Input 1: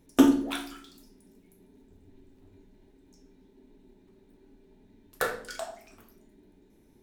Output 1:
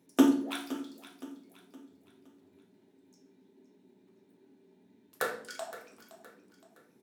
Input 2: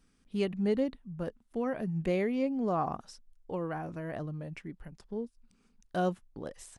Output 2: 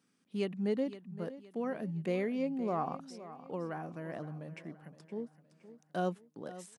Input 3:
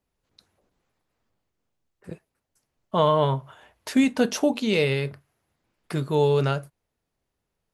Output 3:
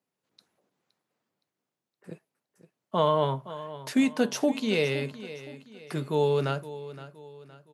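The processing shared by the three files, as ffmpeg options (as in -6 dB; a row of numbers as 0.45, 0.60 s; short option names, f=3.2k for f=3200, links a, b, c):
-filter_complex "[0:a]highpass=f=140:w=0.5412,highpass=f=140:w=1.3066,asplit=2[a][b];[b]aecho=0:1:517|1034|1551|2068:0.178|0.0729|0.0299|0.0123[c];[a][c]amix=inputs=2:normalize=0,volume=-3.5dB"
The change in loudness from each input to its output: -4.0, -4.0, -4.0 LU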